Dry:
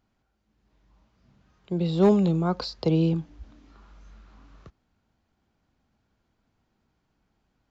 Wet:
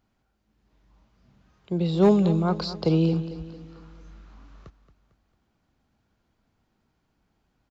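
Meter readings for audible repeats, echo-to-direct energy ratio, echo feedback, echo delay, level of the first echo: 4, -13.0 dB, 48%, 225 ms, -14.0 dB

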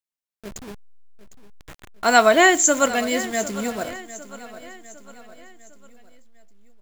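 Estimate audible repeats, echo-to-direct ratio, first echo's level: 3, -15.0 dB, -16.0 dB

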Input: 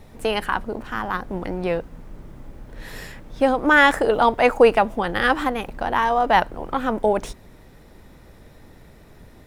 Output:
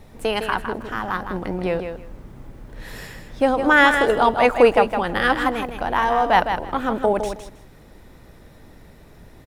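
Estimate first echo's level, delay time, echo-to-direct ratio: -7.5 dB, 159 ms, -7.5 dB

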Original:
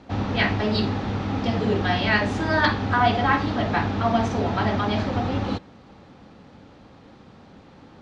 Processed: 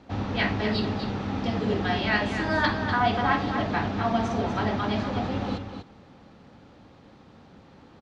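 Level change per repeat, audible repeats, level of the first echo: no regular repeats, 1, -8.0 dB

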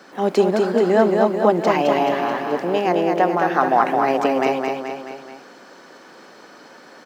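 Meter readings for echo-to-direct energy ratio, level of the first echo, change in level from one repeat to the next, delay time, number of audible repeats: -2.5 dB, -4.0 dB, -5.0 dB, 215 ms, 4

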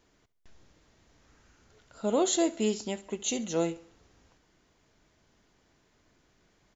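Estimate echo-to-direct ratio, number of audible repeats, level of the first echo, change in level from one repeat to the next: -18.0 dB, 3, -19.0 dB, -7.0 dB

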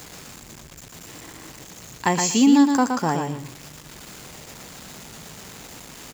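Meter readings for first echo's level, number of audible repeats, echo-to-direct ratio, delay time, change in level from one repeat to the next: -5.5 dB, 2, -5.5 dB, 119 ms, -15.5 dB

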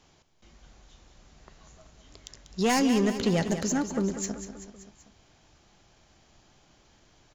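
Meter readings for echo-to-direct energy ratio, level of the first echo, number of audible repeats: -8.5 dB, -10.5 dB, 4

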